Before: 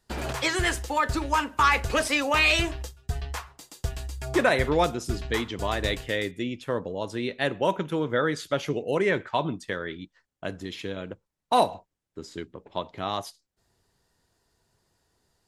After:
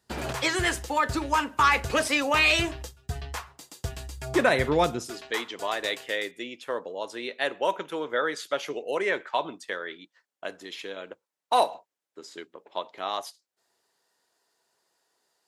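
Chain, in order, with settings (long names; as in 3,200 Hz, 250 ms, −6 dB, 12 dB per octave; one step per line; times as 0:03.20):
high-pass filter 76 Hz 12 dB per octave, from 0:05.07 460 Hz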